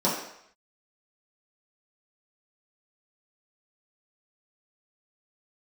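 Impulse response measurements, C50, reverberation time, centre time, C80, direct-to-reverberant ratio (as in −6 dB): 4.0 dB, 0.70 s, 45 ms, 6.5 dB, −8.5 dB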